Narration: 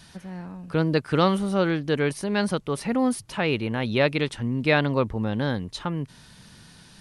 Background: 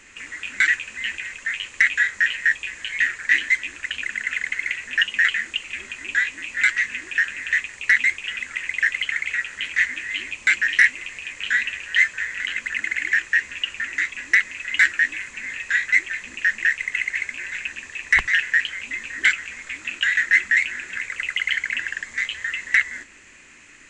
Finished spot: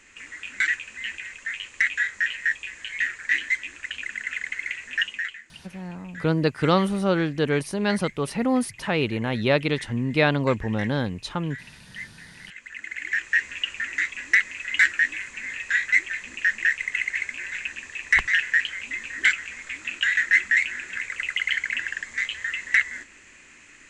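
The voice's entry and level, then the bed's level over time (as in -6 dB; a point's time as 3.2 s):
5.50 s, +0.5 dB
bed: 5.07 s -5 dB
5.43 s -20.5 dB
12.27 s -20.5 dB
13.37 s -2 dB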